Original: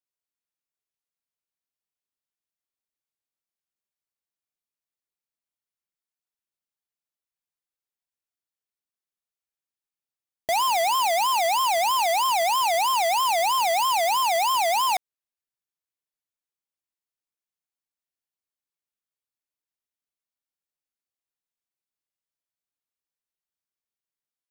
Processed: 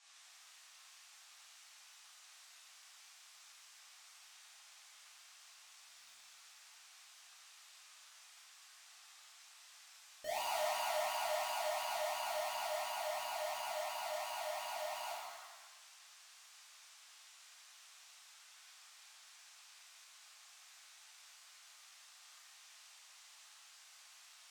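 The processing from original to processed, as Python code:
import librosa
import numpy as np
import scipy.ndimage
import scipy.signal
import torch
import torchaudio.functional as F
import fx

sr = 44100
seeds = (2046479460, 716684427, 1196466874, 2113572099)

y = fx.doppler_pass(x, sr, speed_mps=30, closest_m=2.3, pass_at_s=6.07)
y = fx.dmg_noise_band(y, sr, seeds[0], low_hz=800.0, high_hz=7900.0, level_db=-80.0)
y = fx.rev_shimmer(y, sr, seeds[1], rt60_s=1.3, semitones=7, shimmer_db=-8, drr_db=-8.5)
y = y * librosa.db_to_amplitude(9.5)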